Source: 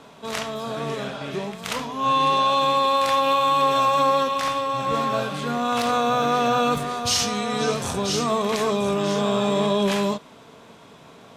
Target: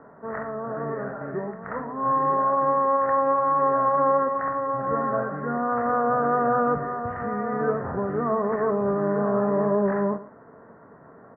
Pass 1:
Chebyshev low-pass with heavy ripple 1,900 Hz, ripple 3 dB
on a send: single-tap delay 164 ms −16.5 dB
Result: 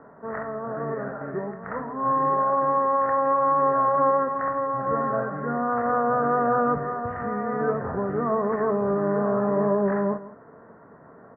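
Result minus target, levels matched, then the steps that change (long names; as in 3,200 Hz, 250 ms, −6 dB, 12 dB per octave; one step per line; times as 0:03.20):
echo 50 ms late
change: single-tap delay 114 ms −16.5 dB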